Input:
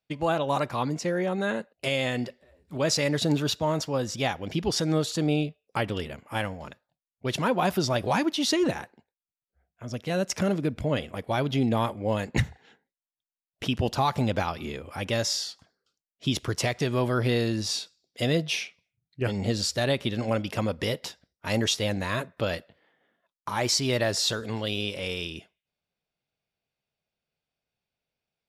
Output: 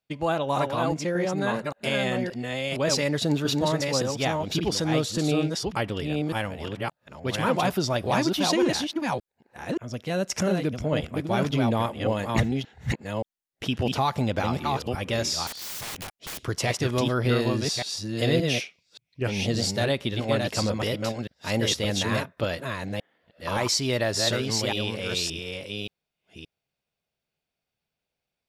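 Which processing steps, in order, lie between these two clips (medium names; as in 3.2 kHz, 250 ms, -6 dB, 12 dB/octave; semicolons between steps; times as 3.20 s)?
chunks repeated in reverse 575 ms, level -3 dB; 15.47–16.41 s: integer overflow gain 30.5 dB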